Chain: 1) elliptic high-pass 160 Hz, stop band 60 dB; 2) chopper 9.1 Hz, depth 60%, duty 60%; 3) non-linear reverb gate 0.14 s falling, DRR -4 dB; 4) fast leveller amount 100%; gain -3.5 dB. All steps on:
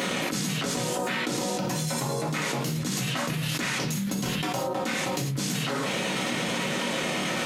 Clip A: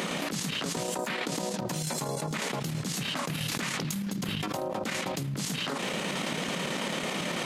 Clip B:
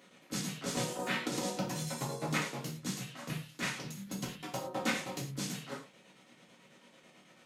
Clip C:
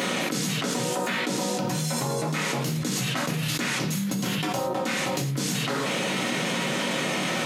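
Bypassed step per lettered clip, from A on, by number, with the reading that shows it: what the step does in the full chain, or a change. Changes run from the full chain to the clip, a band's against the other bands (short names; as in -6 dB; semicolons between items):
3, crest factor change +7.0 dB; 4, crest factor change +6.5 dB; 2, loudness change +1.5 LU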